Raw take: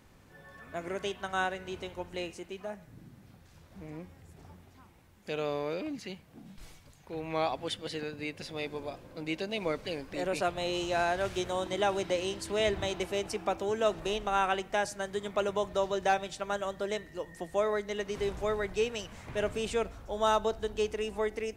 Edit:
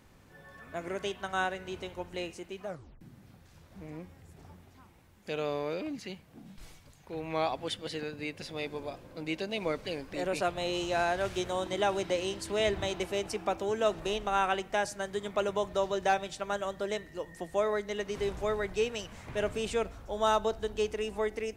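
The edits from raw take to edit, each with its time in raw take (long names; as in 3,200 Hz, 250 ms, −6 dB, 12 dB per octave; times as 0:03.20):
0:02.67: tape stop 0.34 s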